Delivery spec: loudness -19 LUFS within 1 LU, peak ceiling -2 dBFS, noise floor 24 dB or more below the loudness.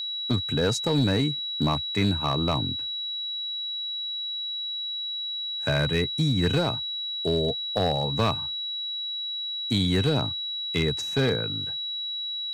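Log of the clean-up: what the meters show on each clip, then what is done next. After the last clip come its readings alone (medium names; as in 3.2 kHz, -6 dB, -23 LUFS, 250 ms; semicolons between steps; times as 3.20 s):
clipped samples 0.8%; clipping level -16.5 dBFS; steady tone 3.9 kHz; tone level -29 dBFS; loudness -26.0 LUFS; peak level -16.5 dBFS; loudness target -19.0 LUFS
-> clip repair -16.5 dBFS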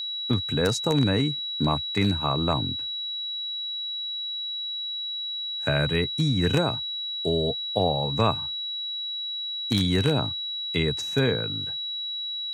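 clipped samples 0.0%; steady tone 3.9 kHz; tone level -29 dBFS
-> band-stop 3.9 kHz, Q 30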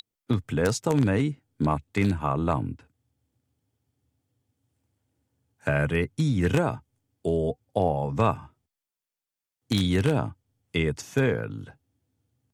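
steady tone not found; loudness -26.5 LUFS; peak level -7.5 dBFS; loudness target -19.0 LUFS
-> trim +7.5 dB; peak limiter -2 dBFS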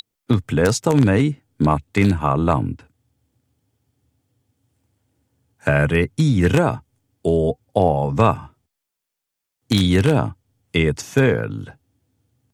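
loudness -19.0 LUFS; peak level -2.0 dBFS; noise floor -82 dBFS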